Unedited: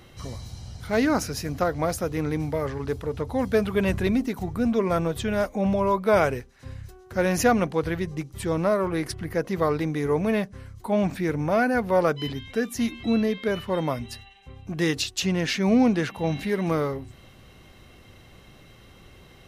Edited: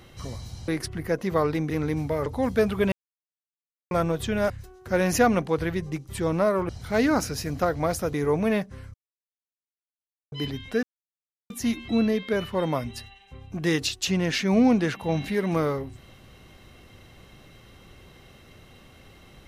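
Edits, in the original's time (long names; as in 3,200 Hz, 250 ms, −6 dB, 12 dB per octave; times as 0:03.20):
0:00.68–0:02.13: swap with 0:08.94–0:09.96
0:02.69–0:03.22: remove
0:03.88–0:04.87: silence
0:05.46–0:06.75: remove
0:10.76–0:12.14: silence
0:12.65: splice in silence 0.67 s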